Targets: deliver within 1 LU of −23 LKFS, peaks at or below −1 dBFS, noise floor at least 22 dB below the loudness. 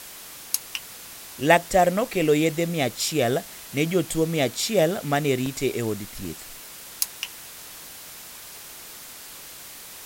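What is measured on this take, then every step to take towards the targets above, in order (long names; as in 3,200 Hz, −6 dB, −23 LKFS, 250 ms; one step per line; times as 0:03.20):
number of dropouts 3; longest dropout 1.9 ms; background noise floor −42 dBFS; target noise floor −46 dBFS; integrated loudness −24.0 LKFS; sample peak −3.5 dBFS; target loudness −23.0 LKFS
→ repair the gap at 0:04.57/0:05.46/0:06.25, 1.9 ms
noise reduction from a noise print 6 dB
level +1 dB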